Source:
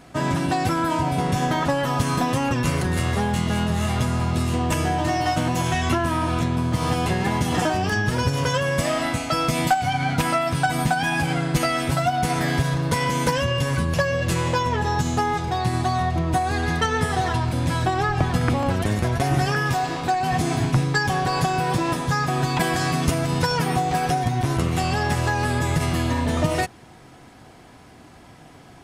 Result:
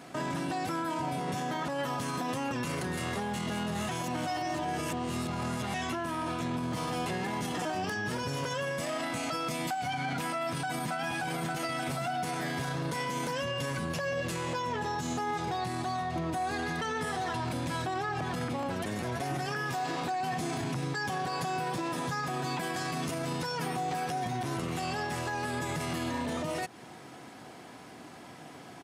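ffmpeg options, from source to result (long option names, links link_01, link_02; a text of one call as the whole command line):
ffmpeg -i in.wav -filter_complex "[0:a]asplit=2[link_01][link_02];[link_02]afade=type=in:start_time=10.3:duration=0.01,afade=type=out:start_time=11:duration=0.01,aecho=0:1:580|1160|1740|2320|2900|3480|4060:0.891251|0.445625|0.222813|0.111406|0.0557032|0.0278516|0.0139258[link_03];[link_01][link_03]amix=inputs=2:normalize=0,asplit=3[link_04][link_05][link_06];[link_04]atrim=end=3.892[link_07];[link_05]atrim=start=3.888:end=5.742,asetpts=PTS-STARTPTS,areverse[link_08];[link_06]atrim=start=5.738[link_09];[link_07][link_08]acrossfade=duration=0.004:curve1=hsin:curve2=hsin[link_10];[link_10][link_09]acrossfade=duration=0.004:curve1=hsin:curve2=hsin,highpass=170,acompressor=threshold=-27dB:ratio=6,alimiter=level_in=1.5dB:limit=-24dB:level=0:latency=1:release=18,volume=-1.5dB" out.wav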